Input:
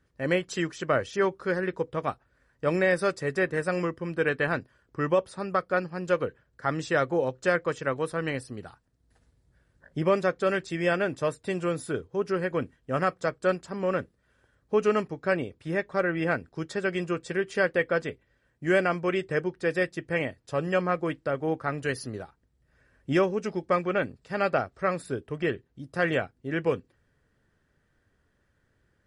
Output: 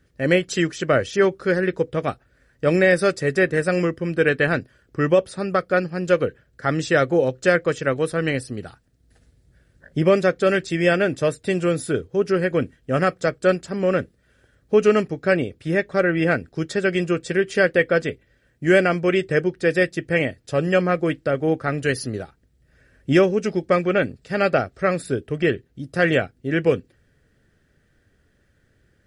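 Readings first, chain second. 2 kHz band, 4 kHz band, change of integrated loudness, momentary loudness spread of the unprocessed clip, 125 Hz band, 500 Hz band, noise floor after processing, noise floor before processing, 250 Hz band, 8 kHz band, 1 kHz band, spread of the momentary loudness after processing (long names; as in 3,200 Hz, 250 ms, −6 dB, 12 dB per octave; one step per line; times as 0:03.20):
+7.0 dB, +8.0 dB, +7.0 dB, 8 LU, +8.5 dB, +7.5 dB, −63 dBFS, −71 dBFS, +8.0 dB, +8.5 dB, +3.5 dB, 8 LU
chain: parametric band 990 Hz −10.5 dB 0.63 octaves
level +8.5 dB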